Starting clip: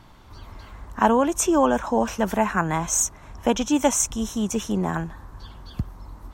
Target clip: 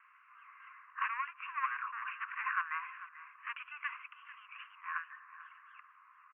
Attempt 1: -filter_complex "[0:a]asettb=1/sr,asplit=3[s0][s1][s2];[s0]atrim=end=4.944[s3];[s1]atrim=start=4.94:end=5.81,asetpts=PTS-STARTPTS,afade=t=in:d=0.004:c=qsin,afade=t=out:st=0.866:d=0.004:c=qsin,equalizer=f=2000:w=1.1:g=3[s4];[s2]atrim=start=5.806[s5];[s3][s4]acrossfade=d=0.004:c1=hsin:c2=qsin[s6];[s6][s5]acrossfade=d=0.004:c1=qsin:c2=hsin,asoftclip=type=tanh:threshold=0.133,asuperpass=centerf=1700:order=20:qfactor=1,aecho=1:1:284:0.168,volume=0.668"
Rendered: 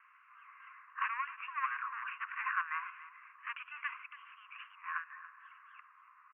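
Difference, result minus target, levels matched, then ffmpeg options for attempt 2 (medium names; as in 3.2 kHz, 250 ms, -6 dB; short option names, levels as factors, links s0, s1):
echo 160 ms early
-filter_complex "[0:a]asettb=1/sr,asplit=3[s0][s1][s2];[s0]atrim=end=4.944[s3];[s1]atrim=start=4.94:end=5.81,asetpts=PTS-STARTPTS,afade=t=in:d=0.004:c=qsin,afade=t=out:st=0.866:d=0.004:c=qsin,equalizer=f=2000:w=1.1:g=3[s4];[s2]atrim=start=5.806[s5];[s3][s4]acrossfade=d=0.004:c1=hsin:c2=qsin[s6];[s6][s5]acrossfade=d=0.004:c1=qsin:c2=hsin,asoftclip=type=tanh:threshold=0.133,asuperpass=centerf=1700:order=20:qfactor=1,aecho=1:1:444:0.168,volume=0.668"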